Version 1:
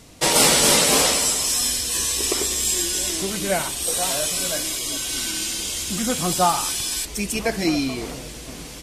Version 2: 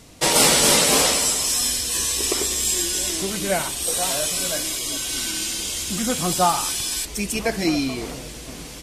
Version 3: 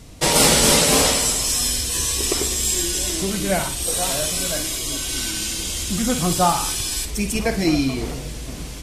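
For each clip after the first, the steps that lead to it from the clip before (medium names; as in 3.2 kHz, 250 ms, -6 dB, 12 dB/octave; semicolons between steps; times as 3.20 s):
no audible change
bass shelf 150 Hz +11 dB; on a send: flutter echo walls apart 8.9 m, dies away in 0.29 s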